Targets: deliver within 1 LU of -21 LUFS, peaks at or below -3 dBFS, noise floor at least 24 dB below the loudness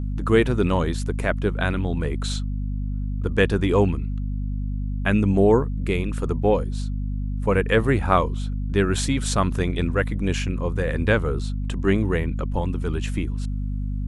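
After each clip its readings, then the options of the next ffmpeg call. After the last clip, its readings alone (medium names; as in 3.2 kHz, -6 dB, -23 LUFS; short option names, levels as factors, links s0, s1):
hum 50 Hz; highest harmonic 250 Hz; hum level -24 dBFS; loudness -23.5 LUFS; peak level -3.5 dBFS; loudness target -21.0 LUFS
-> -af "bandreject=f=50:t=h:w=4,bandreject=f=100:t=h:w=4,bandreject=f=150:t=h:w=4,bandreject=f=200:t=h:w=4,bandreject=f=250:t=h:w=4"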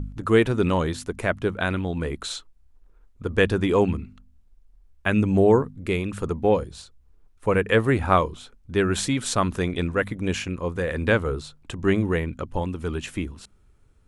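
hum not found; loudness -24.0 LUFS; peak level -4.5 dBFS; loudness target -21.0 LUFS
-> -af "volume=1.41,alimiter=limit=0.708:level=0:latency=1"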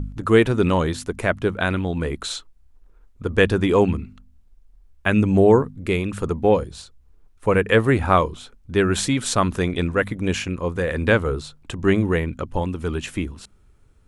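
loudness -21.0 LUFS; peak level -3.0 dBFS; noise floor -54 dBFS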